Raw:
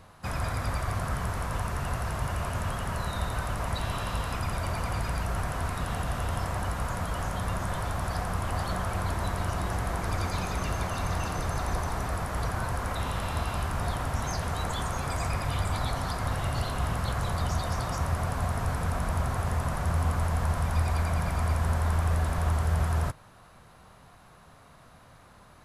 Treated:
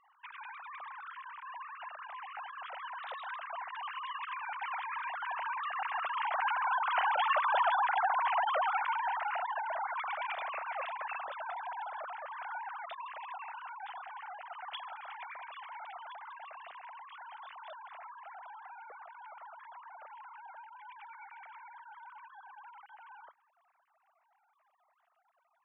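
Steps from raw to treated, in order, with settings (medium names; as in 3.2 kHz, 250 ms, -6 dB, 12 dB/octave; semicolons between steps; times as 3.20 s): formants replaced by sine waves; Doppler pass-by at 7.52 s, 9 m/s, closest 9 m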